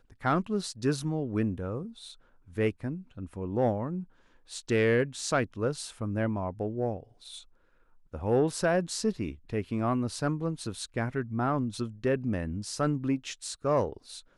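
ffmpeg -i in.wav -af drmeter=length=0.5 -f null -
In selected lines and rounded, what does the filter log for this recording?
Channel 1: DR: 8.8
Overall DR: 8.8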